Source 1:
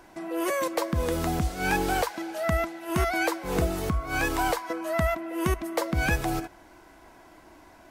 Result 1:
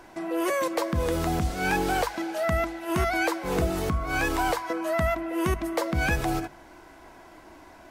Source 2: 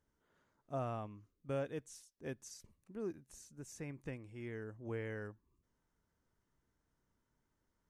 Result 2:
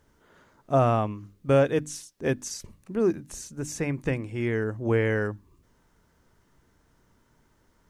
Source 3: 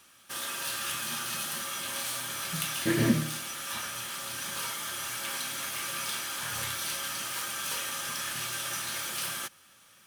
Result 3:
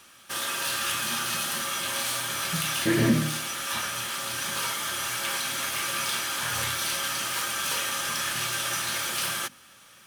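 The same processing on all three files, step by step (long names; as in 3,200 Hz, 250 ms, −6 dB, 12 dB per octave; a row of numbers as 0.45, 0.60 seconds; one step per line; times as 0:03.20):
high-shelf EQ 7,800 Hz −4 dB
mains-hum notches 50/100/150/200/250/300 Hz
in parallel at 0 dB: brickwall limiter −24 dBFS
on the sum: loudness normalisation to −27 LKFS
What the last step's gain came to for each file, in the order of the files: −2.5, +12.5, +0.5 decibels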